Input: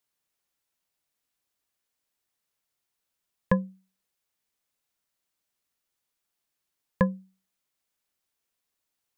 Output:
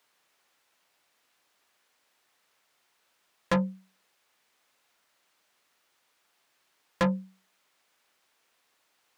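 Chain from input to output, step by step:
mid-hump overdrive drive 23 dB, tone 2,100 Hz, clips at −9 dBFS
soft clipping −23 dBFS, distortion −8 dB
level +2.5 dB

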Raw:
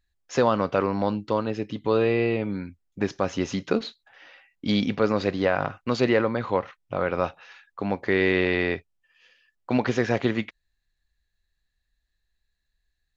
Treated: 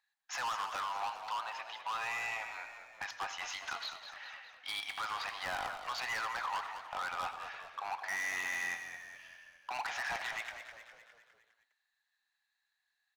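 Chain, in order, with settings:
elliptic high-pass filter 800 Hz, stop band 50 dB
high-shelf EQ 2,000 Hz −8.5 dB
in parallel at −1 dB: downward compressor, threshold −45 dBFS, peak gain reduction 20 dB
on the sum: gain into a clipping stage and back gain 33.5 dB
echo with shifted repeats 204 ms, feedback 55%, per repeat −46 Hz, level −9.5 dB
on a send at −13.5 dB: convolution reverb RT60 0.30 s, pre-delay 76 ms

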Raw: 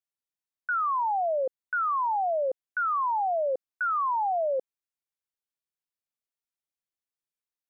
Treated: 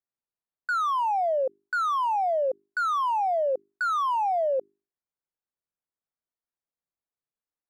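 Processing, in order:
adaptive Wiener filter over 15 samples
mains-hum notches 50/100/150/200/250/300/350/400 Hz
level +2.5 dB

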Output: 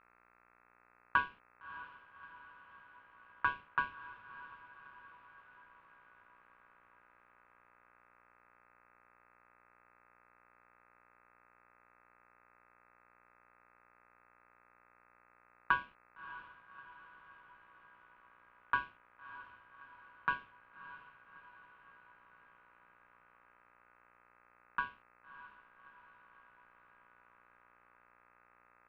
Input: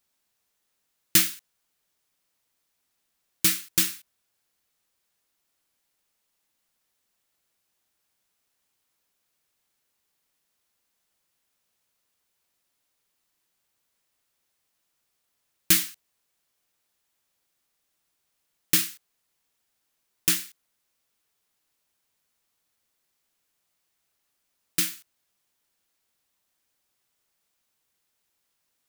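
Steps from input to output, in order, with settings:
low-pass filter 1,100 Hz 24 dB per octave
hum with harmonics 60 Hz, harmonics 22, −69 dBFS −3 dB per octave
ring modulation 1,300 Hz
feedback delay with all-pass diffusion 621 ms, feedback 59%, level −14.5 dB
level +4 dB

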